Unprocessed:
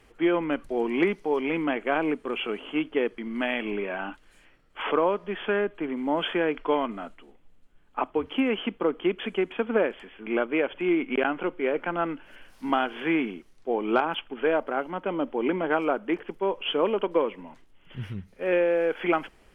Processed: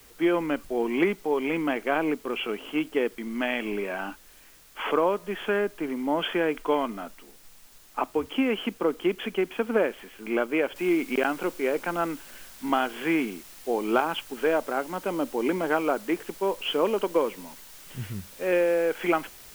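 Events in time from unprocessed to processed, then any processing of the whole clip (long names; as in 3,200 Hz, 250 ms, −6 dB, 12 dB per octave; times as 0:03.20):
0:10.76: noise floor change −55 dB −48 dB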